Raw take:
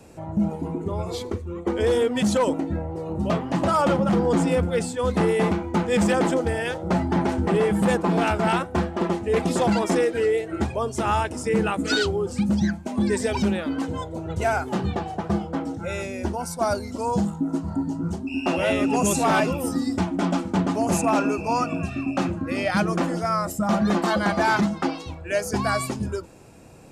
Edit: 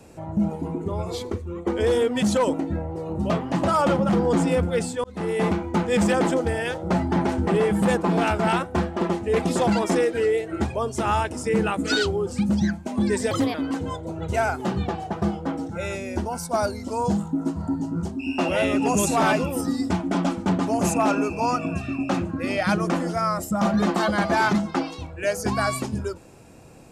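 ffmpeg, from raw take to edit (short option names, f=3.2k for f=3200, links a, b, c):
-filter_complex "[0:a]asplit=4[a][b][c][d];[a]atrim=end=5.04,asetpts=PTS-STARTPTS,afade=t=out:st=5.036:d=0.004:c=hsin[e];[b]atrim=start=5.04:end=13.314,asetpts=PTS-STARTPTS,afade=t=in:d=0.44[f];[c]atrim=start=13.31:end=13.62,asetpts=PTS-STARTPTS,asetrate=58653,aresample=44100[g];[d]atrim=start=13.616[h];[e][f]concat=n=2:v=0:a=1[i];[i][g]acrossfade=d=0.004:c1=hsin:c2=hsin[j];[j][h]acrossfade=d=0.004:c1=hsin:c2=hsin"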